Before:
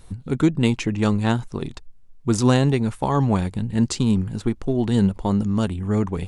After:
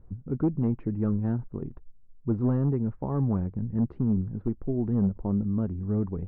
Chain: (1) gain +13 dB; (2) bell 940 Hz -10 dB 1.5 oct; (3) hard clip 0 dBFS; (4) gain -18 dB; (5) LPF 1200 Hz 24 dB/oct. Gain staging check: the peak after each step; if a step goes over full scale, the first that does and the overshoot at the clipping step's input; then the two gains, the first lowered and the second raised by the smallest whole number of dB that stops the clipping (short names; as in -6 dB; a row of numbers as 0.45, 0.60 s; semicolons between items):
+9.5, +8.0, 0.0, -18.0, -17.5 dBFS; step 1, 8.0 dB; step 1 +5 dB, step 4 -10 dB